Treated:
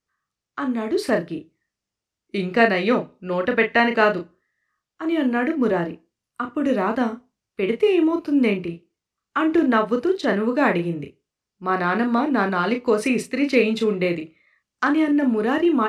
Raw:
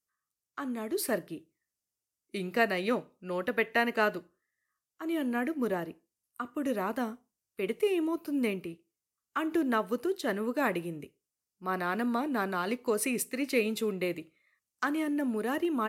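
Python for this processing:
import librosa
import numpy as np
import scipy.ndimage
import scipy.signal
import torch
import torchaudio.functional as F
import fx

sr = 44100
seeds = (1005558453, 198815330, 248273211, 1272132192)

y = scipy.signal.sosfilt(scipy.signal.butter(2, 4600.0, 'lowpass', fs=sr, output='sos'), x)
y = fx.low_shelf(y, sr, hz=160.0, db=5.0)
y = fx.doubler(y, sr, ms=35.0, db=-6)
y = y * 10.0 ** (9.0 / 20.0)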